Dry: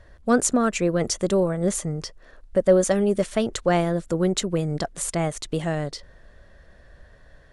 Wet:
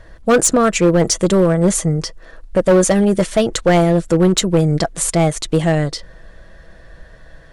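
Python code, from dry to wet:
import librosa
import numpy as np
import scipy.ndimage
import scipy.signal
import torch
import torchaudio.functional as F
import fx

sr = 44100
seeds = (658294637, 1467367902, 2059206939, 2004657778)

y = x + 0.4 * np.pad(x, (int(6.1 * sr / 1000.0), 0))[:len(x)]
y = np.clip(y, -10.0 ** (-15.5 / 20.0), 10.0 ** (-15.5 / 20.0))
y = F.gain(torch.from_numpy(y), 8.5).numpy()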